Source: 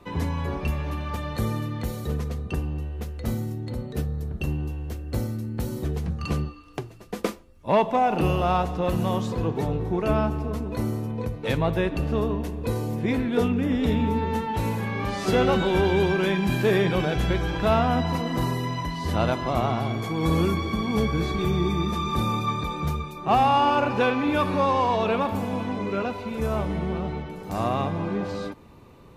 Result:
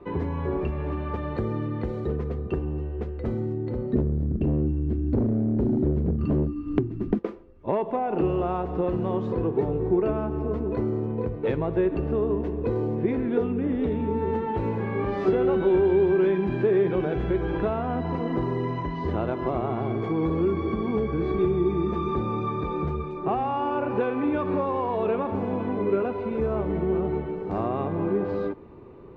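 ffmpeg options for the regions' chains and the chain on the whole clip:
-filter_complex "[0:a]asettb=1/sr,asplit=3[s0][s1][s2];[s0]atrim=end=3.934[s3];[s1]atrim=start=3.93:end=7.19,asetpts=PTS-STARTPTS,afade=t=in:d=0.004:c=qsin,afade=t=out:st=3.256:d=0.004:c=qsin,lowshelf=f=370:t=q:w=3:g=11.5,acontrast=87,volume=2.11,asoftclip=hard,volume=0.473[s4];[s2]atrim=start=7.186[s5];[s3][s4]acrossfade=d=0.004:c1=hsin:c2=qsin[s6];[s6][s5]acrossfade=d=0.004:c1=qsin:c2=hsin,acompressor=threshold=0.0562:ratio=6,lowpass=1900,equalizer=f=380:w=2.4:g=11"

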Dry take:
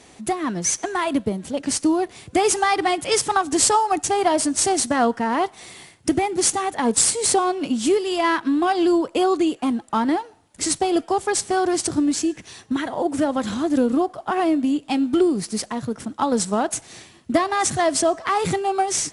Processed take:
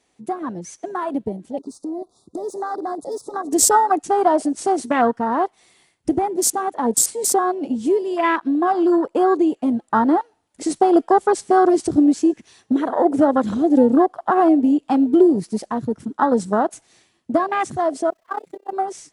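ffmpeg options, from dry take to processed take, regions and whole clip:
-filter_complex "[0:a]asettb=1/sr,asplit=3[s0][s1][s2];[s0]atrim=end=1.584[s3];[s1]atrim=start=1.58:end=3.52,asetpts=PTS-STARTPTS,afade=t=in:d=0.004:c=qsin,afade=t=out:st=1.936:d=0.004:c=qsin,volume=6.31,asoftclip=hard,volume=0.158,acompressor=threshold=0.0631:ratio=12:attack=3.2:release=140:knee=1:detection=peak,asuperstop=centerf=2200:order=20:qfactor=0.95[s4];[s2]atrim=start=3.516[s5];[s3][s4]acrossfade=d=0.004:c1=hsin:c2=qsin[s6];[s6][s5]acrossfade=d=0.004:c1=qsin:c2=hsin,asettb=1/sr,asplit=3[s7][s8][s9];[s7]atrim=end=18.104[s10];[s8]atrim=start=18.1:end=18.73,asetpts=PTS-STARTPTS,afade=t=in:d=0.004:c=qsin,afade=t=out:st=0.626:d=0.004:c=qsin,aeval=exprs='val(0)+0.5*0.0473*sgn(val(0))':c=same,agate=range=0.158:threshold=0.112:ratio=16:release=100:detection=peak,tremolo=f=32:d=0.857[s11];[s9]atrim=start=18.726[s12];[s10][s11]acrossfade=d=0.004:c1=hsin:c2=qsin[s13];[s13][s12]acrossfade=d=0.004:c1=qsin:c2=hsin,afwtdn=0.0631,equalizer=f=110:w=0.69:g=-5.5,dynaudnorm=f=290:g=17:m=3.76,volume=0.891"

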